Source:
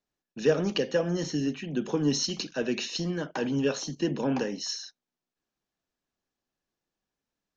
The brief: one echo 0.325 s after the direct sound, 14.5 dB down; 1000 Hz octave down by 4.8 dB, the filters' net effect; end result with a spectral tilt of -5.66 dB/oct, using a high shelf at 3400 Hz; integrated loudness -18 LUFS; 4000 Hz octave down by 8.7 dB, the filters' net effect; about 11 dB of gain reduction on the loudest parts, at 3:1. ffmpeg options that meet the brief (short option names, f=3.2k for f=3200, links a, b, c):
-af "equalizer=f=1k:t=o:g=-5.5,highshelf=f=3.4k:g=-8,equalizer=f=4k:t=o:g=-5.5,acompressor=threshold=-34dB:ratio=3,aecho=1:1:325:0.188,volume=19dB"